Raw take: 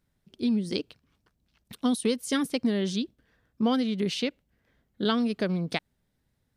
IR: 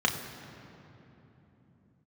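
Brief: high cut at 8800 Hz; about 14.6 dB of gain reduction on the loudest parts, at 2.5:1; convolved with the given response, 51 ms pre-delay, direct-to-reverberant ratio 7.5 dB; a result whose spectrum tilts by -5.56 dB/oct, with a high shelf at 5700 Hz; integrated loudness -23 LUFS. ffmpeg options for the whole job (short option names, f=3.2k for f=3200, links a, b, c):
-filter_complex "[0:a]lowpass=8.8k,highshelf=f=5.7k:g=-3.5,acompressor=threshold=-44dB:ratio=2.5,asplit=2[a][b];[1:a]atrim=start_sample=2205,adelay=51[c];[b][c]afir=irnorm=-1:irlink=0,volume=-19.5dB[d];[a][d]amix=inputs=2:normalize=0,volume=18dB"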